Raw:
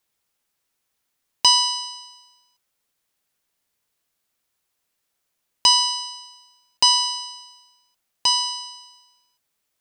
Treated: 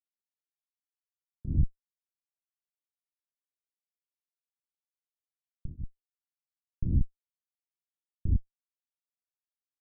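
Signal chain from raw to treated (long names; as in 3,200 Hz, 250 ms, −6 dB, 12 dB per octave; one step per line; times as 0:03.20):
comparator with hysteresis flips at −13 dBFS
inverse Chebyshev low-pass filter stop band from 1,000 Hz, stop band 70 dB
tremolo along a rectified sine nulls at 1.3 Hz
level +8 dB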